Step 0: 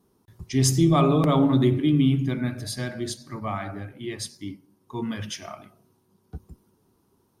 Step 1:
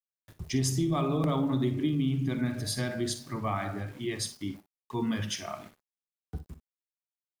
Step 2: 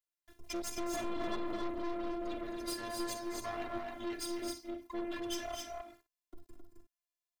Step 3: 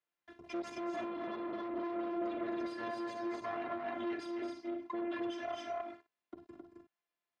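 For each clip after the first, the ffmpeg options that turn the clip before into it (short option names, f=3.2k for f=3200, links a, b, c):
-filter_complex "[0:a]acompressor=threshold=-25dB:ratio=6,aeval=exprs='val(0)*gte(abs(val(0)),0.00316)':c=same,asplit=2[a][b];[b]aecho=0:1:45|58:0.15|0.211[c];[a][c]amix=inputs=2:normalize=0"
-af "afftfilt=real='hypot(re,im)*cos(PI*b)':imag='0':win_size=512:overlap=0.75,aeval=exprs='(tanh(89.1*val(0)+0.6)-tanh(0.6))/89.1':c=same,aecho=1:1:224.5|265.3:0.282|0.631,volume=4.5dB"
-af "acompressor=threshold=-42dB:ratio=3,alimiter=level_in=14dB:limit=-24dB:level=0:latency=1:release=113,volume=-14dB,highpass=160,lowpass=2.5k,volume=8.5dB"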